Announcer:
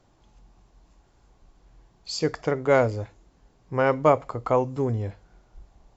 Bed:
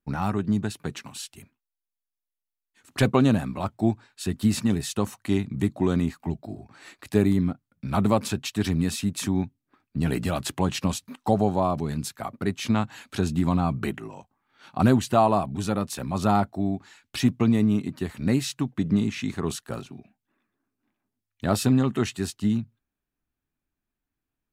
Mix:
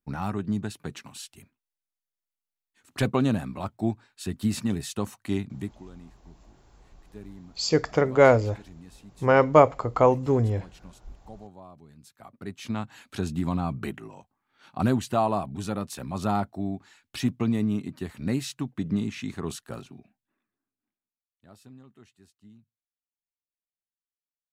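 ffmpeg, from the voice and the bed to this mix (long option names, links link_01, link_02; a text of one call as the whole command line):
ffmpeg -i stem1.wav -i stem2.wav -filter_complex "[0:a]adelay=5500,volume=3dB[link_01];[1:a]volume=15dB,afade=type=out:start_time=5.42:duration=0.42:silence=0.105925,afade=type=in:start_time=11.99:duration=1.15:silence=0.112202,afade=type=out:start_time=20.07:duration=1.12:silence=0.0595662[link_02];[link_01][link_02]amix=inputs=2:normalize=0" out.wav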